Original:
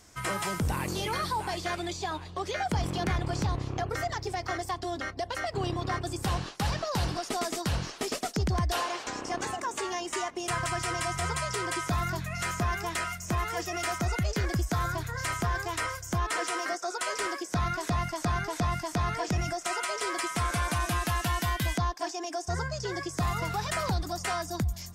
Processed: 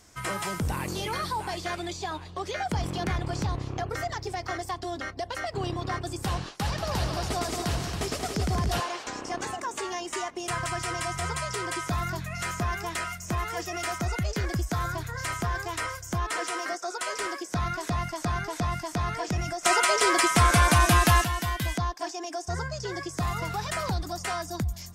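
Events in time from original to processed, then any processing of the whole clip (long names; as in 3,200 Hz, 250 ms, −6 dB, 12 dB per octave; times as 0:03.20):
0:06.48–0:08.80: echo machine with several playback heads 92 ms, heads second and third, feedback 48%, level −7.5 dB
0:19.63–0:21.24: clip gain +9.5 dB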